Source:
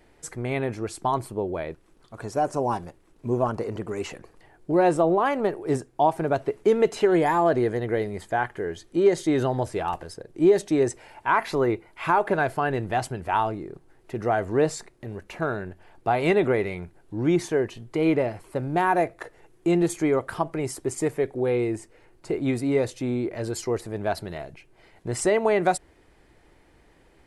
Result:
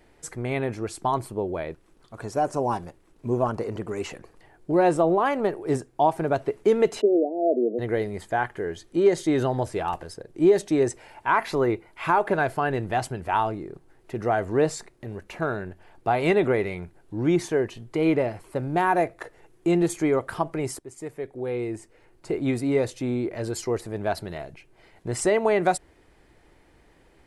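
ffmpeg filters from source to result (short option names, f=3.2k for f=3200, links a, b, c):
-filter_complex "[0:a]asplit=3[a][b][c];[a]afade=t=out:st=7:d=0.02[d];[b]asuperpass=centerf=380:order=20:qfactor=0.78,afade=t=in:st=7:d=0.02,afade=t=out:st=7.78:d=0.02[e];[c]afade=t=in:st=7.78:d=0.02[f];[d][e][f]amix=inputs=3:normalize=0,asplit=2[g][h];[g]atrim=end=20.79,asetpts=PTS-STARTPTS,afade=t=out:st=20.786:d=0.004:c=hsin:silence=0.158489[i];[h]atrim=start=20.79,asetpts=PTS-STARTPTS,afade=t=in:d=1.58:silence=0.158489[j];[i][j]concat=n=2:v=0:a=1"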